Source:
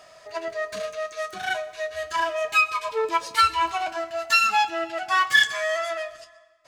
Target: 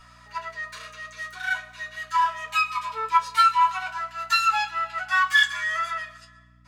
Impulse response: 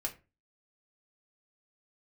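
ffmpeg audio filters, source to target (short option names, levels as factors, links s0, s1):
-filter_complex "[0:a]highpass=f=1200:t=q:w=1.9,aeval=exprs='val(0)+0.00251*(sin(2*PI*60*n/s)+sin(2*PI*2*60*n/s)/2+sin(2*PI*3*60*n/s)/3+sin(2*PI*4*60*n/s)/4+sin(2*PI*5*60*n/s)/5)':c=same[s0];[1:a]atrim=start_sample=2205,asetrate=70560,aresample=44100[s1];[s0][s1]afir=irnorm=-1:irlink=0"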